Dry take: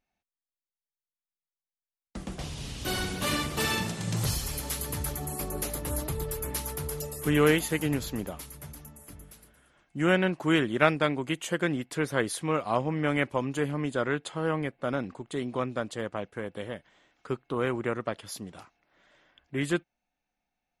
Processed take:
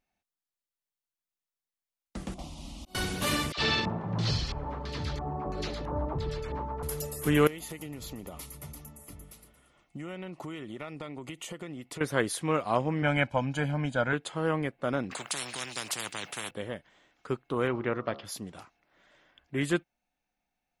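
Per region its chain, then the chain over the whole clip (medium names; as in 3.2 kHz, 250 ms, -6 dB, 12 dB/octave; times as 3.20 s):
2.34–2.95 s: slow attack 658 ms + treble shelf 3.1 kHz -8.5 dB + static phaser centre 440 Hz, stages 6
3.52–6.83 s: distance through air 80 m + phase dispersion lows, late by 61 ms, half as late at 840 Hz + LFO low-pass square 1.5 Hz 970–4400 Hz
7.47–12.01 s: Butterworth band-stop 1.6 kHz, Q 5.7 + compression 10:1, threshold -36 dBFS
13.02–14.13 s: distance through air 58 m + comb 1.3 ms, depth 73%
15.11–16.51 s: high-pass 140 Hz 24 dB/octave + spectrum-flattening compressor 10:1
17.67–18.25 s: steep low-pass 5.5 kHz 48 dB/octave + de-hum 69.11 Hz, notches 20
whole clip: none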